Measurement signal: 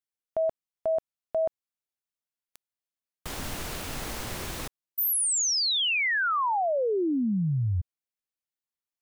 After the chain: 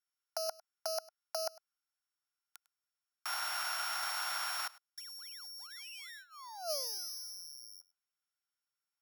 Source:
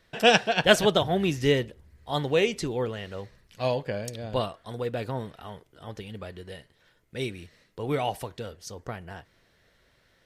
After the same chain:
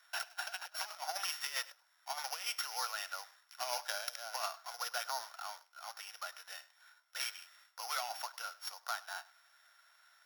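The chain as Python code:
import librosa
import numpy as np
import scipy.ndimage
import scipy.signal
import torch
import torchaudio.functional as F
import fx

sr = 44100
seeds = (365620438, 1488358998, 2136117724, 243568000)

y = np.r_[np.sort(x[:len(x) // 8 * 8].reshape(-1, 8), axis=1).ravel(), x[len(x) // 8 * 8:]]
y = scipy.signal.sosfilt(scipy.signal.butter(8, 720.0, 'highpass', fs=sr, output='sos'), y)
y = fx.peak_eq(y, sr, hz=1400.0, db=12.5, octaves=0.21)
y = fx.over_compress(y, sr, threshold_db=-33.0, ratio=-0.5)
y = y + 10.0 ** (-21.0 / 20.0) * np.pad(y, (int(102 * sr / 1000.0), 0))[:len(y)]
y = y * 10.0 ** (-6.0 / 20.0)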